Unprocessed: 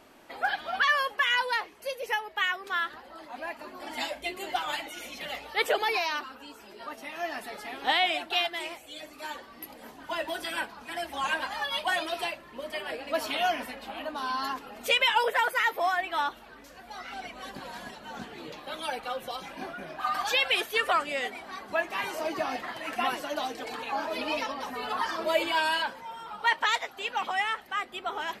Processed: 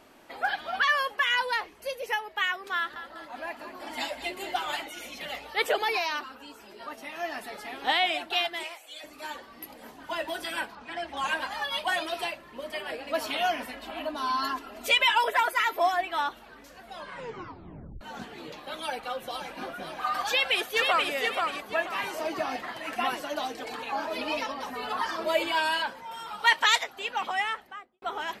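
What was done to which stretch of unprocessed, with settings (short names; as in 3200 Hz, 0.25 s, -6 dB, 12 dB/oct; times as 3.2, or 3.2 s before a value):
1.39–2.03 low shelf 110 Hz +9.5 dB
2.76–4.84 feedback echo 0.198 s, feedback 51%, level -12 dB
8.63–9.04 HPF 640 Hz
10.75–11.17 Bessel low-pass 4100 Hz
13.73–16.03 comb 3 ms
16.81 tape stop 1.20 s
18.75–19.58 echo throw 0.52 s, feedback 60%, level -8 dB
20.28–21.12 echo throw 0.48 s, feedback 30%, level -3.5 dB
26.11–26.84 high shelf 2200 Hz +9.5 dB
27.44–28.02 studio fade out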